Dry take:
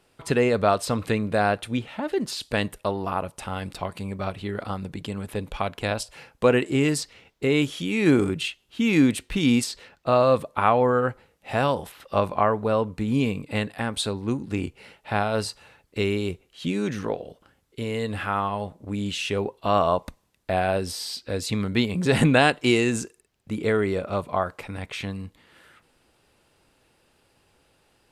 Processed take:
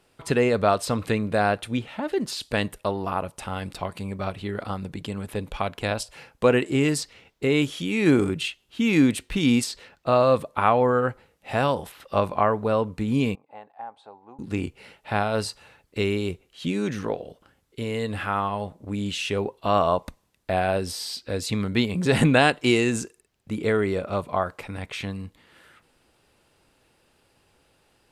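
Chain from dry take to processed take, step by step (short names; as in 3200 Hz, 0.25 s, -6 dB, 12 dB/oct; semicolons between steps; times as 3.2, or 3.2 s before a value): 13.35–14.39 band-pass 800 Hz, Q 6.7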